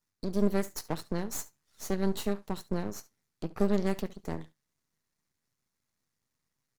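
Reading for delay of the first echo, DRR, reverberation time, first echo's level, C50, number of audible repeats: 70 ms, no reverb, no reverb, -19.5 dB, no reverb, 1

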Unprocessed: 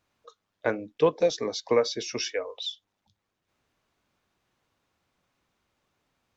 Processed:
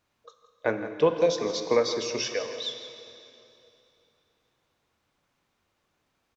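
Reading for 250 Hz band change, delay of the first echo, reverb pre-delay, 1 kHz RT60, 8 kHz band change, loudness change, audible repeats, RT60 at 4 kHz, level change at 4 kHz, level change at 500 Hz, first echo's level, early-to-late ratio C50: +1.0 dB, 167 ms, 7 ms, 2.9 s, no reading, +1.0 dB, 1, 2.7 s, +1.0 dB, +1.0 dB, -13.0 dB, 7.0 dB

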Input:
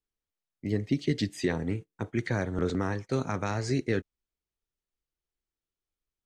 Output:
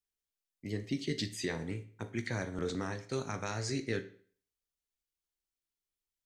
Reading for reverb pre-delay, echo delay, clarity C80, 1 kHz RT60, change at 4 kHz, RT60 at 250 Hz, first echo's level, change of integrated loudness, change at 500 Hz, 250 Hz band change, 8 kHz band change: 18 ms, no echo, 18.0 dB, 0.50 s, -0.5 dB, 0.50 s, no echo, -6.5 dB, -6.5 dB, -8.0 dB, +1.0 dB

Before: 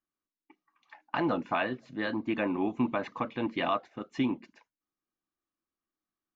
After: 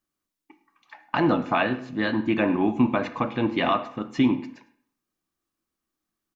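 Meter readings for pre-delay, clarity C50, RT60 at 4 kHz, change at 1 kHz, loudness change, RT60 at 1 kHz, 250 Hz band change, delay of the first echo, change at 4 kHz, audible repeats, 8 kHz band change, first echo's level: 8 ms, 12.5 dB, 0.55 s, +6.5 dB, +7.5 dB, 0.65 s, +8.5 dB, 105 ms, +7.0 dB, 1, no reading, -20.5 dB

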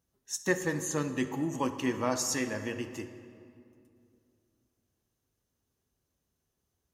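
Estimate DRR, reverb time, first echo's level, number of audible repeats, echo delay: 9.0 dB, 2.5 s, no echo, no echo, no echo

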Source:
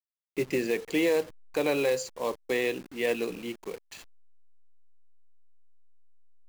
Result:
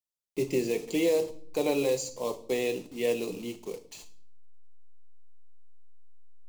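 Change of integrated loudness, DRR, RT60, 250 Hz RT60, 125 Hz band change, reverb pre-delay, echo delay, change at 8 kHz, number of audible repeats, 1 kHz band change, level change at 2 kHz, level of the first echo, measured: -0.5 dB, 7.5 dB, 0.55 s, 0.90 s, +1.5 dB, 5 ms, no echo, +2.5 dB, no echo, -2.5 dB, -6.5 dB, no echo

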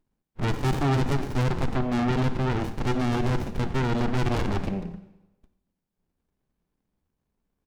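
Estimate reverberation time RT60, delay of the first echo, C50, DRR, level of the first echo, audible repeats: 1.0 s, 92 ms, 12.0 dB, 10.0 dB, -18.5 dB, 1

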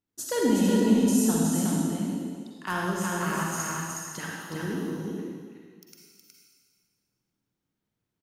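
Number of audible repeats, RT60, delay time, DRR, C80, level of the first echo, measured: 1, 1.8 s, 367 ms, -5.0 dB, -2.5 dB, -3.5 dB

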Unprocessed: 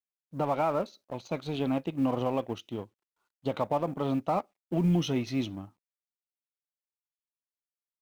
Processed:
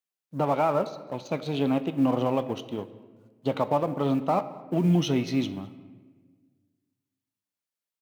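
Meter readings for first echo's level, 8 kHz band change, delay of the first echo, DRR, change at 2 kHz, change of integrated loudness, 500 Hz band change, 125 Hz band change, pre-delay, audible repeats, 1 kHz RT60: -24.0 dB, no reading, 211 ms, 12.0 dB, +3.5 dB, +4.0 dB, +4.0 dB, +3.5 dB, 3 ms, 1, 1.3 s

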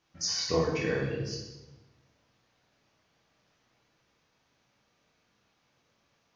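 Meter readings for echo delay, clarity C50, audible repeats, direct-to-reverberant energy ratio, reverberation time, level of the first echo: no echo, 2.5 dB, no echo, -2.5 dB, 1.0 s, no echo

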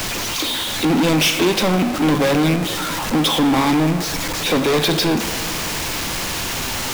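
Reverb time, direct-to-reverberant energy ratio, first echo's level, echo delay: 2.7 s, 9.0 dB, no echo, no echo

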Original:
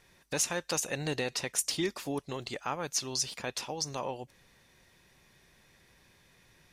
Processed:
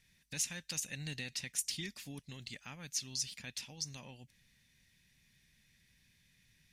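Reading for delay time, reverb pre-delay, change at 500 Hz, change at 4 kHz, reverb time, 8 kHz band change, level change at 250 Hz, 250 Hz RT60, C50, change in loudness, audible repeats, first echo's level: no echo, no reverb, -20.5 dB, -5.5 dB, no reverb, -5.5 dB, -11.0 dB, no reverb, no reverb, -6.5 dB, no echo, no echo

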